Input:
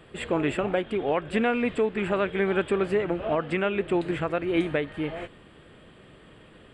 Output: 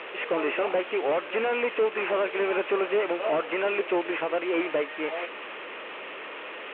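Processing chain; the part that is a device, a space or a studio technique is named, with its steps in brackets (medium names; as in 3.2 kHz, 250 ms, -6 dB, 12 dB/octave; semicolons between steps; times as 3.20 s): digital answering machine (band-pass 360–3200 Hz; one-bit delta coder 16 kbps, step -38 dBFS; cabinet simulation 470–4000 Hz, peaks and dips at 720 Hz -4 dB, 1.6 kHz -4 dB, 2.6 kHz +4 dB); trim +7.5 dB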